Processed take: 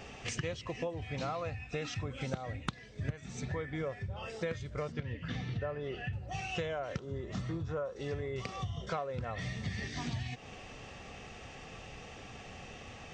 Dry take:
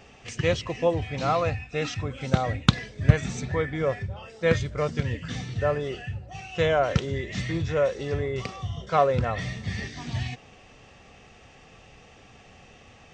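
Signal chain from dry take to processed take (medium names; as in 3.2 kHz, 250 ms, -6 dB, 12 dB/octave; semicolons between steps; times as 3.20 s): 4.92–6.13 s: low-pass 3.5 kHz 12 dB/octave; 6.98–7.96 s: resonant high shelf 1.6 kHz -7 dB, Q 3; compression 12:1, threshold -37 dBFS, peak gain reduction 28 dB; trim +3 dB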